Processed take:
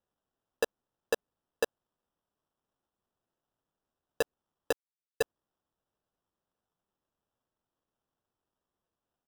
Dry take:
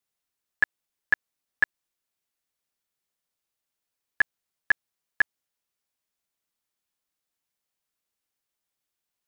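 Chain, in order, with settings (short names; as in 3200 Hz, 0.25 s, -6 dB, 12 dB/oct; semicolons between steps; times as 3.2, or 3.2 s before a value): 4.71–5.21 CVSD 32 kbps; comb 6.8 ms, depth 63%; sample-rate reducer 2200 Hz, jitter 0%; gain -6 dB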